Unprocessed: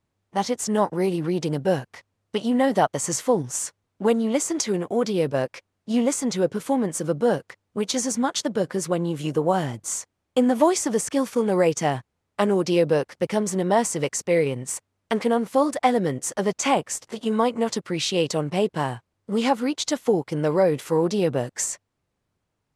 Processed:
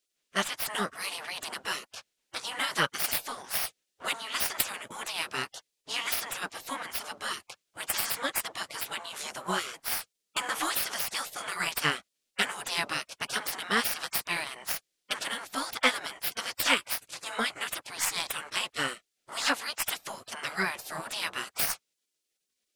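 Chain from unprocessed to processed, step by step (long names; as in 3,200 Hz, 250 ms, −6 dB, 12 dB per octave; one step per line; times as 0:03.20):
stylus tracing distortion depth 0.042 ms
low shelf with overshoot 630 Hz −12 dB, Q 1.5
gate on every frequency bin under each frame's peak −15 dB weak
level +7.5 dB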